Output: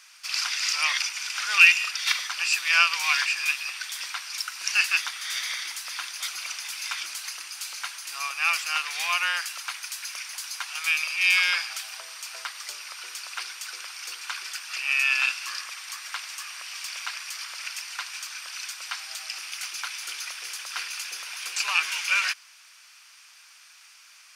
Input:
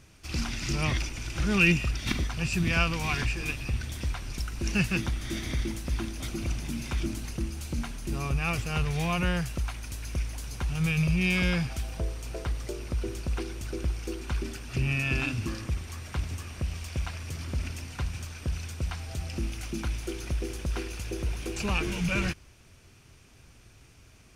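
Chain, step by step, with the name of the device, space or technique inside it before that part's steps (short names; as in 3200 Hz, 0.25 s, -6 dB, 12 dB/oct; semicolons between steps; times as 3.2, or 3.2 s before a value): headphones lying on a table (HPF 1100 Hz 24 dB/oct; bell 4800 Hz +5 dB 0.39 oct); gain +8.5 dB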